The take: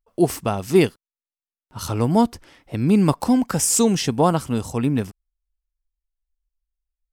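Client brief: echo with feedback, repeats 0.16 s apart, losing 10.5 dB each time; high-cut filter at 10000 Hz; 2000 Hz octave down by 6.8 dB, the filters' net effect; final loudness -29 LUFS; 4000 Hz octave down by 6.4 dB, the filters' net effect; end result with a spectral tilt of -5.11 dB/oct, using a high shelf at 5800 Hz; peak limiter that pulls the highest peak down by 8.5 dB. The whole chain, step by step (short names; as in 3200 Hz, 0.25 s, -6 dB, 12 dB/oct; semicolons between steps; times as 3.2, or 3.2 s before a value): LPF 10000 Hz; bell 2000 Hz -7 dB; bell 4000 Hz -3.5 dB; high shelf 5800 Hz -7 dB; limiter -12 dBFS; feedback echo 0.16 s, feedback 30%, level -10.5 dB; gain -5.5 dB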